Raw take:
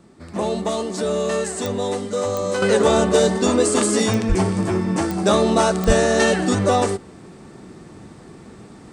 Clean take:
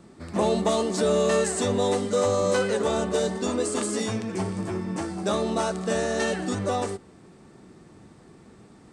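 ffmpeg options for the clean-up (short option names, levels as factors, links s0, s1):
-filter_complex "[0:a]adeclick=t=4,asplit=3[s0][s1][s2];[s0]afade=t=out:st=4.28:d=0.02[s3];[s1]highpass=f=140:w=0.5412,highpass=f=140:w=1.3066,afade=t=in:st=4.28:d=0.02,afade=t=out:st=4.4:d=0.02[s4];[s2]afade=t=in:st=4.4:d=0.02[s5];[s3][s4][s5]amix=inputs=3:normalize=0,asplit=3[s6][s7][s8];[s6]afade=t=out:st=5.86:d=0.02[s9];[s7]highpass=f=140:w=0.5412,highpass=f=140:w=1.3066,afade=t=in:st=5.86:d=0.02,afade=t=out:st=5.98:d=0.02[s10];[s8]afade=t=in:st=5.98:d=0.02[s11];[s9][s10][s11]amix=inputs=3:normalize=0,asetnsamples=n=441:p=0,asendcmd='2.62 volume volume -9dB',volume=1"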